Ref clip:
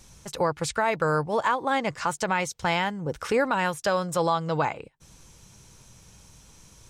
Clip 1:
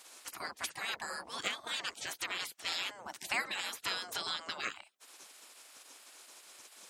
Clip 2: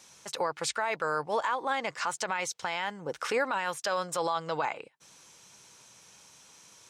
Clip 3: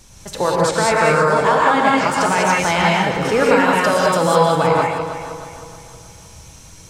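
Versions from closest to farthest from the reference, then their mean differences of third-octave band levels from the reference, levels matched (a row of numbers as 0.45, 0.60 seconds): 2, 3, 1; 4.5, 8.5, 12.5 decibels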